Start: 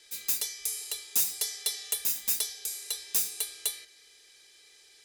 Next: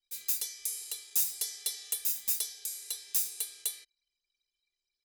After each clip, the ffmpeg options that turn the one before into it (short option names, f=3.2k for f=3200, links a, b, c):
-af "anlmdn=0.00631,highshelf=f=4.2k:g=7,volume=-8.5dB"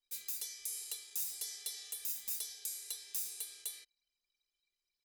-af "alimiter=limit=-24dB:level=0:latency=1:release=112,volume=-2.5dB"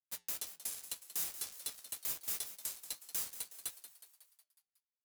-filter_complex "[0:a]acrusher=bits=5:mix=0:aa=0.5,flanger=delay=6.8:depth=2:regen=-81:speed=1.9:shape=triangular,asplit=2[a][b];[b]asplit=6[c][d][e][f][g][h];[c]adelay=183,afreqshift=150,volume=-12.5dB[i];[d]adelay=366,afreqshift=300,volume=-17.2dB[j];[e]adelay=549,afreqshift=450,volume=-22dB[k];[f]adelay=732,afreqshift=600,volume=-26.7dB[l];[g]adelay=915,afreqshift=750,volume=-31.4dB[m];[h]adelay=1098,afreqshift=900,volume=-36.2dB[n];[i][j][k][l][m][n]amix=inputs=6:normalize=0[o];[a][o]amix=inputs=2:normalize=0,volume=5dB"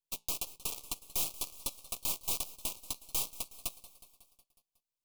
-af "aeval=exprs='0.0562*(cos(1*acos(clip(val(0)/0.0562,-1,1)))-cos(1*PI/2))+0.0158*(cos(7*acos(clip(val(0)/0.0562,-1,1)))-cos(7*PI/2))':c=same,aeval=exprs='max(val(0),0)':c=same,asuperstop=centerf=1700:order=8:qfactor=1.4,volume=6dB"